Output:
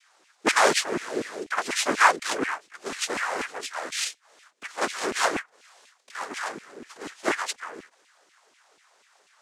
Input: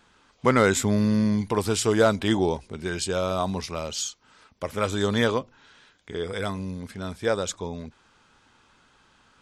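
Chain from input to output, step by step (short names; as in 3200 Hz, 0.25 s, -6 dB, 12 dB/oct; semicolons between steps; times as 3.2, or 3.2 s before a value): tilt +1.5 dB/oct; added harmonics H 3 -13 dB, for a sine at -6.5 dBFS; noise vocoder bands 3; LFO high-pass saw down 4.1 Hz 250–2700 Hz; gain +4.5 dB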